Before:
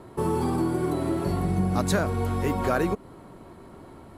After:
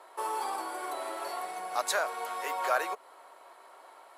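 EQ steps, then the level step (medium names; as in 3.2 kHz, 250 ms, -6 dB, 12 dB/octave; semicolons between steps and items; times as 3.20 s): high-pass 630 Hz 24 dB/octave; 0.0 dB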